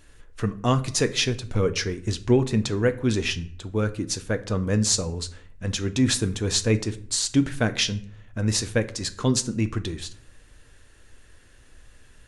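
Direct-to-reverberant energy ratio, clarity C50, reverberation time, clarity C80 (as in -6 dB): 10.0 dB, 17.0 dB, 0.60 s, 20.5 dB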